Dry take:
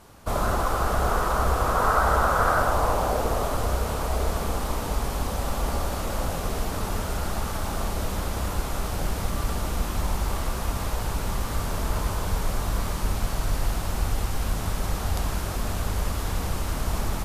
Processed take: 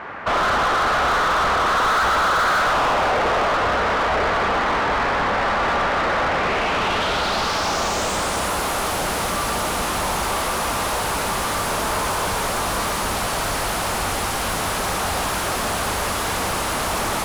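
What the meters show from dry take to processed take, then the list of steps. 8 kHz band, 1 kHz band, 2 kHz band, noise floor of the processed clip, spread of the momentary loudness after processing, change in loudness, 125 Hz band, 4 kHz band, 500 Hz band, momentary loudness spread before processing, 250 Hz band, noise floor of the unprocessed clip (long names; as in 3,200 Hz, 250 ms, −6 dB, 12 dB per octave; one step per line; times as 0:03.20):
+8.5 dB, +8.5 dB, +12.0 dB, −24 dBFS, 5 LU, +7.0 dB, −4.0 dB, +12.0 dB, +6.5 dB, 8 LU, +3.5 dB, −30 dBFS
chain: low-pass filter sweep 1,900 Hz → 11,000 Hz, 0:06.27–0:08.56
mid-hump overdrive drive 34 dB, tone 3,200 Hz, clips at −5 dBFS
level −7 dB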